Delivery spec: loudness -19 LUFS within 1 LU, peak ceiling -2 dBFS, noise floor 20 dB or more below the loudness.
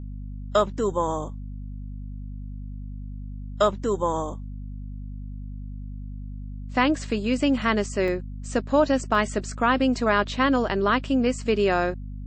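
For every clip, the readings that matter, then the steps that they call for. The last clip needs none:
dropouts 3; longest dropout 1.9 ms; hum 50 Hz; highest harmonic 250 Hz; hum level -32 dBFS; loudness -24.0 LUFS; peak level -8.5 dBFS; loudness target -19.0 LUFS
-> interpolate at 8.08/9.15/11.41 s, 1.9 ms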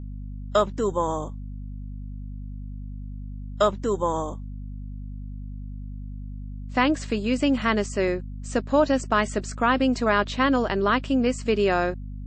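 dropouts 0; hum 50 Hz; highest harmonic 250 Hz; hum level -32 dBFS
-> hum notches 50/100/150/200/250 Hz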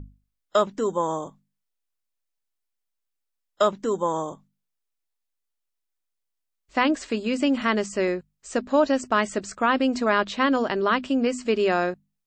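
hum not found; loudness -24.5 LUFS; peak level -8.0 dBFS; loudness target -19.0 LUFS
-> trim +5.5 dB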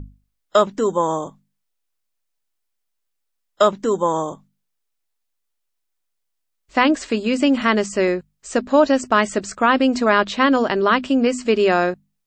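loudness -19.0 LUFS; peak level -2.5 dBFS; noise floor -75 dBFS

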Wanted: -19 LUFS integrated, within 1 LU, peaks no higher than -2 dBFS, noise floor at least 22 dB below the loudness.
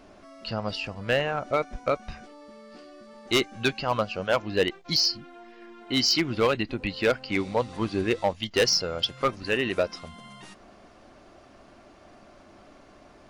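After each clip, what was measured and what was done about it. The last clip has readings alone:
clipped samples 0.5%; clipping level -15.5 dBFS; loudness -26.0 LUFS; peak level -15.5 dBFS; loudness target -19.0 LUFS
-> clip repair -15.5 dBFS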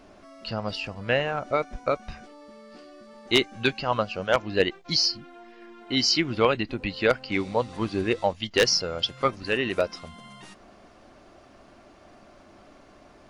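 clipped samples 0.0%; loudness -25.5 LUFS; peak level -6.5 dBFS; loudness target -19.0 LUFS
-> trim +6.5 dB; peak limiter -2 dBFS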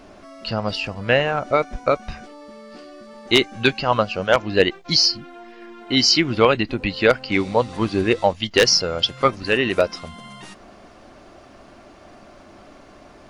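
loudness -19.5 LUFS; peak level -2.0 dBFS; noise floor -47 dBFS

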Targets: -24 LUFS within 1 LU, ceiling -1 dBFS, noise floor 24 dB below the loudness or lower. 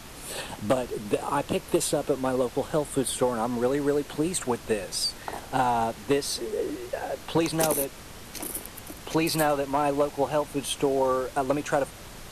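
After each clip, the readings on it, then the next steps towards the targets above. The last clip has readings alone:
clipped samples 0.3%; clipping level -15.0 dBFS; noise floor -44 dBFS; noise floor target -52 dBFS; loudness -27.5 LUFS; peak level -15.0 dBFS; loudness target -24.0 LUFS
-> clip repair -15 dBFS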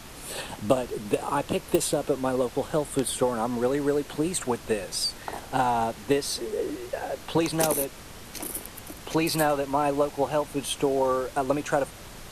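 clipped samples 0.0%; noise floor -44 dBFS; noise floor target -51 dBFS
-> noise print and reduce 7 dB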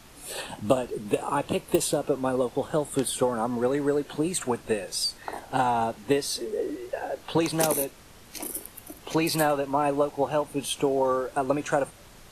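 noise floor -50 dBFS; noise floor target -52 dBFS
-> noise print and reduce 6 dB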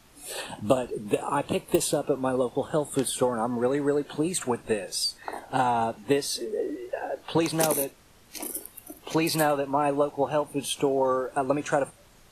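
noise floor -55 dBFS; loudness -27.5 LUFS; peak level -7.0 dBFS; loudness target -24.0 LUFS
-> trim +3.5 dB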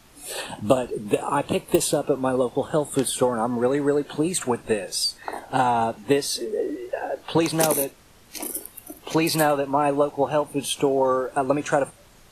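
loudness -24.0 LUFS; peak level -3.5 dBFS; noise floor -52 dBFS

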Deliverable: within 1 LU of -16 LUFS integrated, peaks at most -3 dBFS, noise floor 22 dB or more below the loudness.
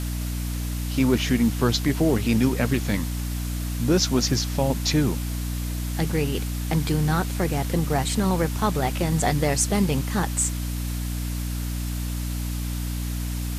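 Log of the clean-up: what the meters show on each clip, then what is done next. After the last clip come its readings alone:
hum 60 Hz; highest harmonic 300 Hz; hum level -25 dBFS; noise floor -28 dBFS; noise floor target -47 dBFS; loudness -24.5 LUFS; peak level -8.0 dBFS; loudness target -16.0 LUFS
-> hum notches 60/120/180/240/300 Hz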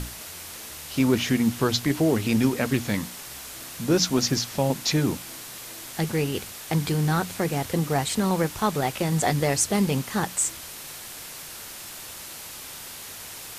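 hum not found; noise floor -40 dBFS; noise floor target -47 dBFS
-> noise reduction 7 dB, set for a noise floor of -40 dBFS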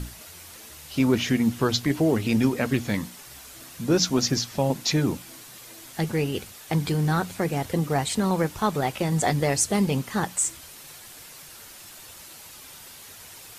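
noise floor -45 dBFS; noise floor target -47 dBFS
-> noise reduction 6 dB, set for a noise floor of -45 dBFS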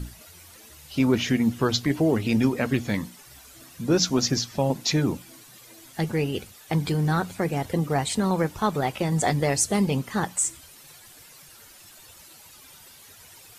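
noise floor -50 dBFS; loudness -24.5 LUFS; peak level -9.5 dBFS; loudness target -16.0 LUFS
-> trim +8.5 dB; peak limiter -3 dBFS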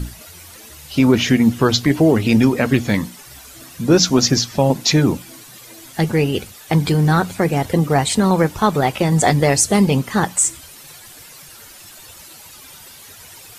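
loudness -16.5 LUFS; peak level -3.0 dBFS; noise floor -41 dBFS

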